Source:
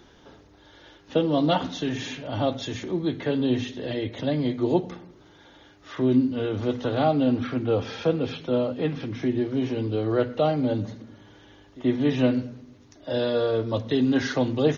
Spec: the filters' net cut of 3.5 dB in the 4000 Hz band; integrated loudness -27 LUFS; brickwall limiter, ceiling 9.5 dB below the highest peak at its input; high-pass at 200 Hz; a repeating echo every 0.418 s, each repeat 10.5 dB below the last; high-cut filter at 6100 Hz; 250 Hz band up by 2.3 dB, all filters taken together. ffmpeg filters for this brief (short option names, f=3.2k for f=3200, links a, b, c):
-af "highpass=200,lowpass=6.1k,equalizer=f=250:t=o:g=4,equalizer=f=4k:t=o:g=-4,alimiter=limit=-18dB:level=0:latency=1,aecho=1:1:418|836|1254:0.299|0.0896|0.0269,volume=0.5dB"